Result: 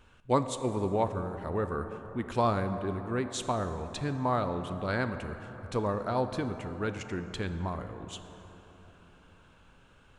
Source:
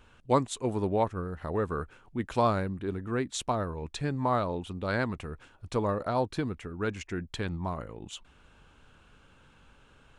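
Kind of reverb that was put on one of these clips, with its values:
dense smooth reverb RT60 4.3 s, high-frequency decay 0.4×, DRR 8.5 dB
level −1.5 dB

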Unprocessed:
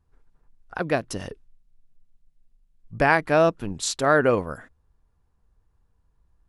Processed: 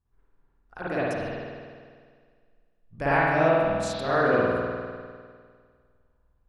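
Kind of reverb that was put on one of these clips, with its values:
spring reverb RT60 1.9 s, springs 50 ms, chirp 25 ms, DRR −10 dB
level −12 dB

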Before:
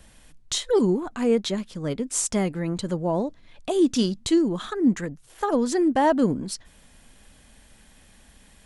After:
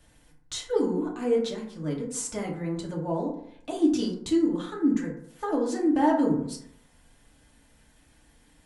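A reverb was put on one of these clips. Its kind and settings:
feedback delay network reverb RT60 0.7 s, low-frequency decay 1×, high-frequency decay 0.4×, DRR −3 dB
level −10 dB

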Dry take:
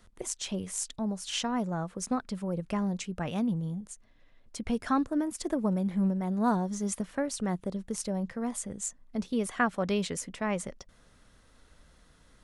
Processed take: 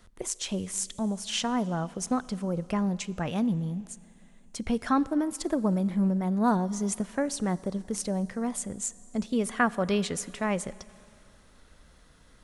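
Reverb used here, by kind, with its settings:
four-comb reverb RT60 2.7 s, combs from 28 ms, DRR 19 dB
level +2.5 dB

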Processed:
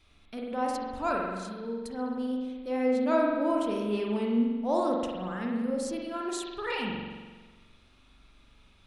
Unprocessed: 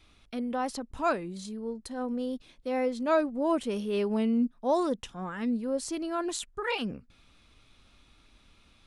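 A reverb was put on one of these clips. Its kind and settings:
spring reverb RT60 1.4 s, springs 43 ms, chirp 25 ms, DRR −1.5 dB
level −3.5 dB

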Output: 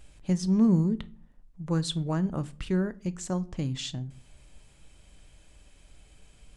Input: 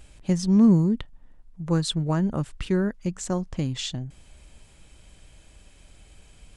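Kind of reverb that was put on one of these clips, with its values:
rectangular room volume 320 cubic metres, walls furnished, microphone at 0.36 metres
level −4.5 dB

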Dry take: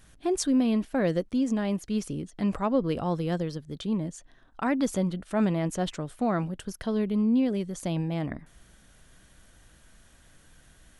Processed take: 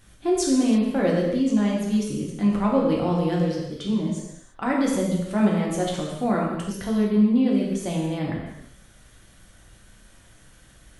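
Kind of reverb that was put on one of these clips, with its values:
reverb whose tail is shaped and stops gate 370 ms falling, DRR −3 dB

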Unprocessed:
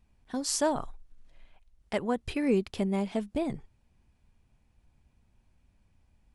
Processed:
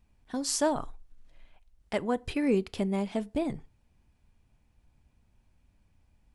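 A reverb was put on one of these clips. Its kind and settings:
feedback delay network reverb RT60 0.34 s, low-frequency decay 0.95×, high-frequency decay 0.75×, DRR 18 dB

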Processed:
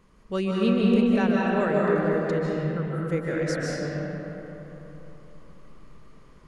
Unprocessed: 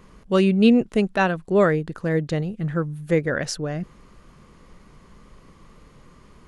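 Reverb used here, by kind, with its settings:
comb and all-pass reverb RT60 3.5 s, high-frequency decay 0.5×, pre-delay 110 ms, DRR −5 dB
level −9.5 dB

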